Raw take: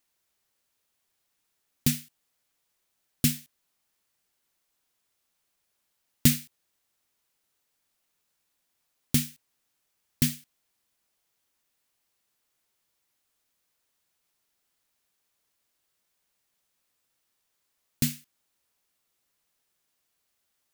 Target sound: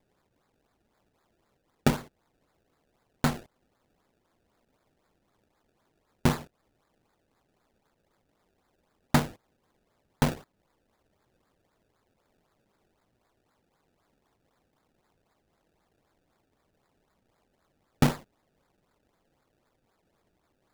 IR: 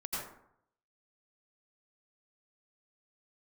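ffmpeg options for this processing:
-af "acrusher=samples=29:mix=1:aa=0.000001:lfo=1:lforange=29:lforate=3.9,alimiter=limit=0.188:level=0:latency=1:release=412,volume=1.68"

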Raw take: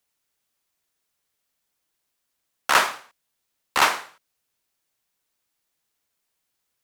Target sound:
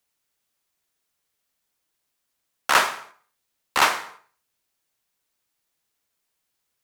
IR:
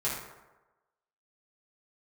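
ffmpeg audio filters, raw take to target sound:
-filter_complex "[0:a]asplit=2[s0][s1];[1:a]atrim=start_sample=2205,afade=t=out:st=0.24:d=0.01,atrim=end_sample=11025,adelay=92[s2];[s1][s2]afir=irnorm=-1:irlink=0,volume=0.0562[s3];[s0][s3]amix=inputs=2:normalize=0"

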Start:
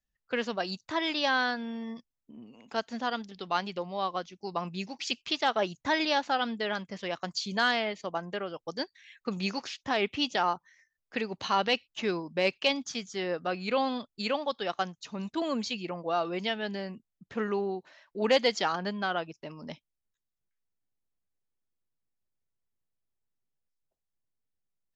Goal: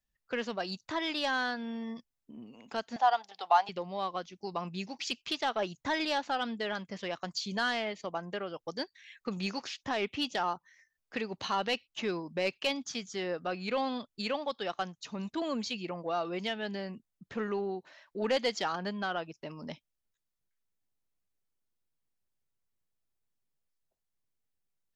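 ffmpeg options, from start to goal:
-filter_complex "[0:a]asplit=2[s0][s1];[s1]acompressor=threshold=0.0126:ratio=6,volume=0.794[s2];[s0][s2]amix=inputs=2:normalize=0,asoftclip=type=tanh:threshold=0.168,asettb=1/sr,asplit=3[s3][s4][s5];[s3]atrim=end=2.964[s6];[s4]atrim=start=2.96:end=3.69,asetpts=PTS-STARTPTS,afade=t=in:d=0.004:c=qsin,afade=t=out:st=0.726:d=0.004:c=qsin,highpass=f=780:t=q:w=6.5[s7];[s5]atrim=start=3.686[s8];[s6][s7]acrossfade=d=0.004:c1=hsin:c2=qsin[s9];[s9][s8]acrossfade=d=0.004:c1=qsin:c2=hsin,volume=0.596"

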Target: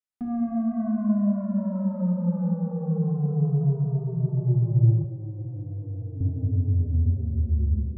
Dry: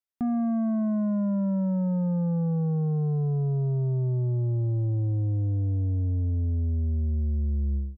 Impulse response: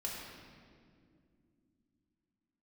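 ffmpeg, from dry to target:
-filter_complex "[1:a]atrim=start_sample=2205,asetrate=22491,aresample=44100[s0];[0:a][s0]afir=irnorm=-1:irlink=0,asettb=1/sr,asplit=3[s1][s2][s3];[s1]atrim=end=5.044[s4];[s2]atrim=start=5.04:end=6.21,asetpts=PTS-STARTPTS,afade=t=in:d=0.004:c=qsin,afade=t=out:st=1.166:d=0.004:c=qsin,acrossover=split=270|570[s5][s6][s7];[s5]acompressor=threshold=0.0447:ratio=4[s8];[s6]acompressor=threshold=0.0126:ratio=4[s9];[s7]acompressor=threshold=0.00141:ratio=4[s10];[s8][s9][s10]amix=inputs=3:normalize=0[s11];[s3]atrim=start=6.206[s12];[s4][s11]acrossfade=d=0.004:c1=hsin:c2=qsin[s13];[s13][s12]acrossfade=d=0.004:c1=qsin:c2=hsin,volume=0.447"

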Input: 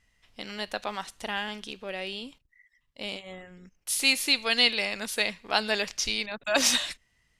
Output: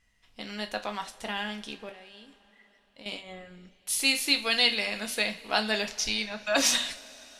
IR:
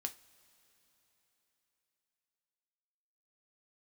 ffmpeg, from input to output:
-filter_complex "[0:a]asettb=1/sr,asplit=3[s0][s1][s2];[s0]atrim=end=1.894[s3];[s1]atrim=start=1.89:end=3.06,asetpts=PTS-STARTPTS,afade=t=in:d=0.004:c=qsin,afade=t=out:st=1.166:d=0.004:c=qsin,acompressor=threshold=0.00447:ratio=6[s4];[s2]atrim=start=3.056[s5];[s3][s4]acrossfade=d=0.004:c1=hsin:c2=qsin[s6];[s6][s5]acrossfade=d=0.004:c1=qsin:c2=hsin[s7];[1:a]atrim=start_sample=2205,asetrate=38367,aresample=44100[s8];[s7][s8]afir=irnorm=-1:irlink=0"

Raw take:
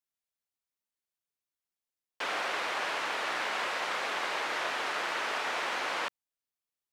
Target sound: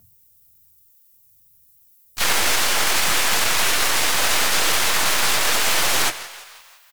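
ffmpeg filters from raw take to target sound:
-filter_complex "[0:a]highpass=120,highshelf=f=5000:g=8.5,asplit=2[s0][s1];[s1]asplit=5[s2][s3][s4][s5][s6];[s2]adelay=168,afreqshift=88,volume=0.188[s7];[s3]adelay=336,afreqshift=176,volume=0.101[s8];[s4]adelay=504,afreqshift=264,volume=0.055[s9];[s5]adelay=672,afreqshift=352,volume=0.0295[s10];[s6]adelay=840,afreqshift=440,volume=0.016[s11];[s7][s8][s9][s10][s11]amix=inputs=5:normalize=0[s12];[s0][s12]amix=inputs=2:normalize=0,aeval=exprs='val(0)+0.00447*(sin(2*PI*50*n/s)+sin(2*PI*2*50*n/s)/2+sin(2*PI*3*50*n/s)/3+sin(2*PI*4*50*n/s)/4+sin(2*PI*5*50*n/s)/5)':c=same,flanger=delay=16:depth=5.5:speed=0.52,bandreject=f=50:t=h:w=6,bandreject=f=100:t=h:w=6,bandreject=f=150:t=h:w=6,bandreject=f=200:t=h:w=6,bandreject=f=250:t=h:w=6,bandreject=f=300:t=h:w=6,bandreject=f=350:t=h:w=6,bandreject=f=400:t=h:w=6,bandreject=f=450:t=h:w=6,bandreject=f=500:t=h:w=6,afreqshift=-160,aemphasis=mode=production:type=riaa,aeval=exprs='0.106*(cos(1*acos(clip(val(0)/0.106,-1,1)))-cos(1*PI/2))+0.00133*(cos(2*acos(clip(val(0)/0.106,-1,1)))-cos(2*PI/2))+0.0335*(cos(6*acos(clip(val(0)/0.106,-1,1)))-cos(6*PI/2))+0.00211*(cos(7*acos(clip(val(0)/0.106,-1,1)))-cos(7*PI/2))+0.0119*(cos(8*acos(clip(val(0)/0.106,-1,1)))-cos(8*PI/2))':c=same,asplit=4[s13][s14][s15][s16];[s14]asetrate=35002,aresample=44100,atempo=1.25992,volume=1[s17];[s15]asetrate=58866,aresample=44100,atempo=0.749154,volume=0.562[s18];[s16]asetrate=66075,aresample=44100,atempo=0.66742,volume=0.501[s19];[s13][s17][s18][s19]amix=inputs=4:normalize=0,alimiter=level_in=5.01:limit=0.891:release=50:level=0:latency=1,volume=0.531"

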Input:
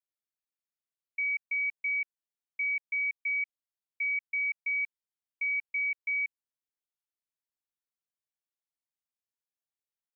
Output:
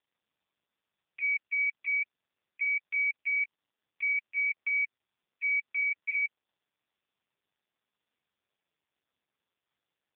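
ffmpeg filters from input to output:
-af "volume=1.41" -ar 8000 -c:a libopencore_amrnb -b:a 5150

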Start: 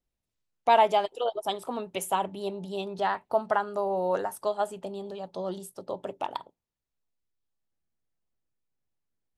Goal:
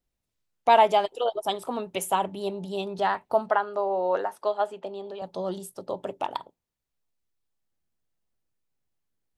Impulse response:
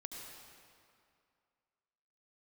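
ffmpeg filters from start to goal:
-filter_complex "[0:a]asettb=1/sr,asplit=3[s0][s1][s2];[s0]atrim=end=3.494[s3];[s1]atrim=start=3.49:end=5.22,asetpts=PTS-STARTPTS,afade=t=in:d=0.004:c=qsin,afade=t=out:st=1.726:d=0.004:c=qsin,acrossover=split=270 4700:gain=0.178 1 0.158[s4][s5][s6];[s4][s5][s6]amix=inputs=3:normalize=0[s7];[s2]atrim=start=5.216[s8];[s3][s7]acrossfade=d=0.004:c1=hsin:c2=qsin[s9];[s9][s8]acrossfade=d=0.004:c1=qsin:c2=hsin,volume=1.33"

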